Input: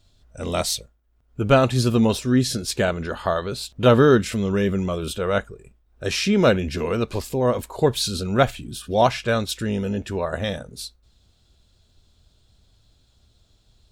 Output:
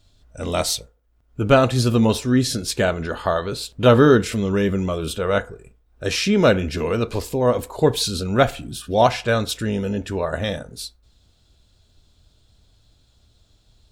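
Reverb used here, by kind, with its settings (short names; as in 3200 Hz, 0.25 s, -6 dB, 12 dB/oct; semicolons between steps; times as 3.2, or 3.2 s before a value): FDN reverb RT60 0.43 s, low-frequency decay 0.7×, high-frequency decay 0.4×, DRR 13 dB; gain +1.5 dB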